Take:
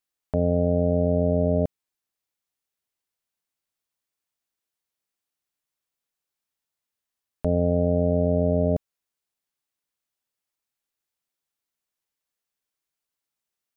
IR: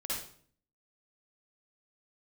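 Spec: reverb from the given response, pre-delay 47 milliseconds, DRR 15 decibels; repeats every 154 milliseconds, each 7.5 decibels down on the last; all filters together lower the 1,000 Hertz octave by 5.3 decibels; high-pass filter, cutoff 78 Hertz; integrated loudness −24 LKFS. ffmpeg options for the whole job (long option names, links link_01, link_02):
-filter_complex "[0:a]highpass=78,equalizer=frequency=1000:width_type=o:gain=-9,aecho=1:1:154|308|462|616|770:0.422|0.177|0.0744|0.0312|0.0131,asplit=2[link_01][link_02];[1:a]atrim=start_sample=2205,adelay=47[link_03];[link_02][link_03]afir=irnorm=-1:irlink=0,volume=-18dB[link_04];[link_01][link_04]amix=inputs=2:normalize=0,volume=0.5dB"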